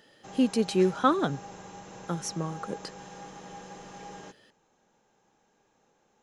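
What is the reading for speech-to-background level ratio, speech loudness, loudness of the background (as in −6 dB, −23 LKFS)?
16.5 dB, −28.5 LKFS, −45.0 LKFS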